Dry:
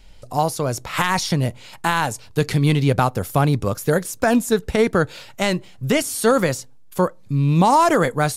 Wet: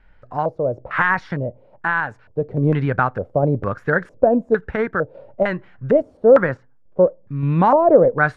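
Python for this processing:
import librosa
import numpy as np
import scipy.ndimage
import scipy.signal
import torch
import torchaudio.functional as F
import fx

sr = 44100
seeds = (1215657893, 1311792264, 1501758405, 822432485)

y = fx.high_shelf(x, sr, hz=3000.0, db=-11.5, at=(6.17, 7.0))
y = fx.filter_lfo_lowpass(y, sr, shape='square', hz=1.1, low_hz=570.0, high_hz=1600.0, q=4.2)
y = fx.tremolo_random(y, sr, seeds[0], hz=3.5, depth_pct=55)
y = y * librosa.db_to_amplitude(-1.5)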